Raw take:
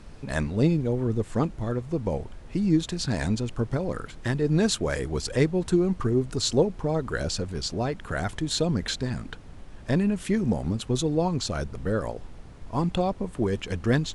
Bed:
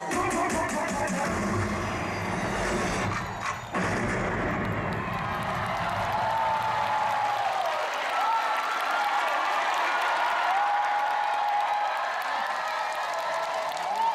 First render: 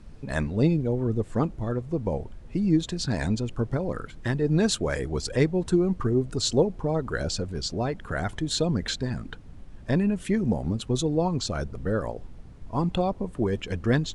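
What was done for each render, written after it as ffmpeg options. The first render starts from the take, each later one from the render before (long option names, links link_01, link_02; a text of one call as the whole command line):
ffmpeg -i in.wav -af "afftdn=noise_reduction=7:noise_floor=-44" out.wav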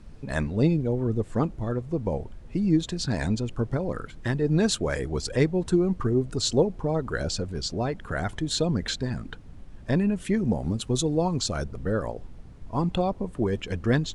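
ffmpeg -i in.wav -filter_complex "[0:a]asettb=1/sr,asplit=3[link_01][link_02][link_03];[link_01]atrim=end=10.624[link_04];[link_02]atrim=start=10.62:end=11.64,asetpts=PTS-STARTPTS,afade=type=in:duration=0.004:curve=qsin,afade=type=out:start_time=1.016:duration=0.004:curve=qsin,highshelf=frequency=6300:gain=7.5[link_05];[link_03]atrim=start=11.636[link_06];[link_04][link_05]acrossfade=duration=0.004:curve1=hsin:curve2=qsin[link_07];[link_07][link_06]acrossfade=duration=0.004:curve1=qsin:curve2=hsin" out.wav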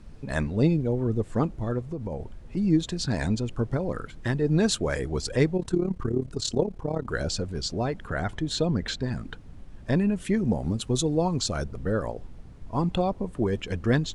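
ffmpeg -i in.wav -filter_complex "[0:a]asettb=1/sr,asplit=3[link_01][link_02][link_03];[link_01]atrim=end=1.844[link_04];[link_02]atrim=start=1.84:end=2.57,asetpts=PTS-STARTPTS,afade=type=in:duration=0.004:curve=qsin,afade=type=out:start_time=0.726:duration=0.004:curve=qsin,acompressor=threshold=-28dB:ratio=6:attack=3.2:release=140:knee=1:detection=peak[link_05];[link_03]atrim=start=2.566[link_06];[link_04][link_05]acrossfade=duration=0.004:curve1=hsin:curve2=qsin[link_07];[link_07][link_06]acrossfade=duration=0.004:curve1=qsin:curve2=hsin,asettb=1/sr,asplit=3[link_08][link_09][link_10];[link_08]atrim=end=5.574[link_11];[link_09]atrim=start=5.57:end=7.09,asetpts=PTS-STARTPTS,afade=type=in:duration=0.004:curve=qsin,afade=type=out:start_time=1.516:duration=0.004:curve=qsin,tremolo=f=35:d=0.788[link_12];[link_10]atrim=start=7.086[link_13];[link_11][link_12]acrossfade=duration=0.004:curve1=hsin:curve2=qsin[link_14];[link_14][link_13]acrossfade=duration=0.004:curve1=qsin:curve2=hsin,asettb=1/sr,asplit=3[link_15][link_16][link_17];[link_15]atrim=end=8.074[link_18];[link_16]atrim=start=8.07:end=9.08,asetpts=PTS-STARTPTS,afade=type=in:duration=0.004:curve=qsin,afade=type=out:start_time=1.006:duration=0.004:curve=qsin,highshelf=frequency=7500:gain=-10[link_19];[link_17]atrim=start=9.076[link_20];[link_18][link_19]acrossfade=duration=0.004:curve1=hsin:curve2=qsin[link_21];[link_21][link_20]acrossfade=duration=0.004:curve1=qsin:curve2=hsin" out.wav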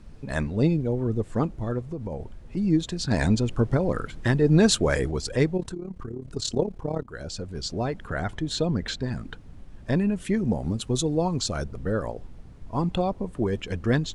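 ffmpeg -i in.wav -filter_complex "[0:a]asettb=1/sr,asplit=3[link_01][link_02][link_03];[link_01]atrim=end=5.714[link_04];[link_02]atrim=start=5.71:end=6.33,asetpts=PTS-STARTPTS,afade=type=in:duration=0.004:curve=qsin,afade=type=out:start_time=0.616:duration=0.004:curve=qsin,acompressor=threshold=-32dB:ratio=4:attack=3.2:release=140:knee=1:detection=peak[link_05];[link_03]atrim=start=6.326[link_06];[link_04][link_05]acrossfade=duration=0.004:curve1=hsin:curve2=qsin[link_07];[link_07][link_06]acrossfade=duration=0.004:curve1=qsin:curve2=hsin,asplit=4[link_08][link_09][link_10][link_11];[link_08]atrim=end=3.112[link_12];[link_09]atrim=start=3.108:end=5.112,asetpts=PTS-STARTPTS,volume=4.5dB[link_13];[link_10]atrim=start=5.108:end=7.03,asetpts=PTS-STARTPTS,afade=type=out:start_time=1.918:duration=0.004:curve=hsin:silence=0.211349[link_14];[link_11]atrim=start=7.03,asetpts=PTS-STARTPTS,afade=type=in:duration=0.75:silence=0.211349[link_15];[link_12][link_13]acrossfade=duration=0.004:curve1=hsin:curve2=hsin[link_16];[link_14][link_15]concat=n=2:v=0:a=1[link_17];[link_16][link_17]acrossfade=duration=0.004:curve1=hsin:curve2=hsin" out.wav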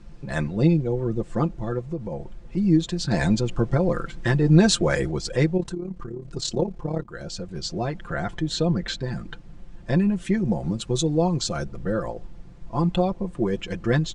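ffmpeg -i in.wav -af "lowpass=frequency=8700:width=0.5412,lowpass=frequency=8700:width=1.3066,aecho=1:1:5.8:0.65" out.wav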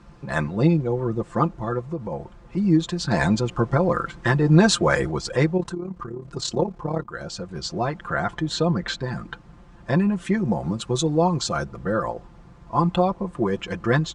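ffmpeg -i in.wav -af "highpass=45,equalizer=frequency=1100:width_type=o:width=1.1:gain=9.5" out.wav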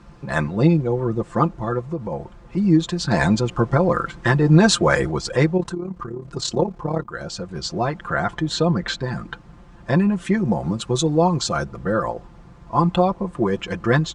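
ffmpeg -i in.wav -af "volume=2.5dB,alimiter=limit=-3dB:level=0:latency=1" out.wav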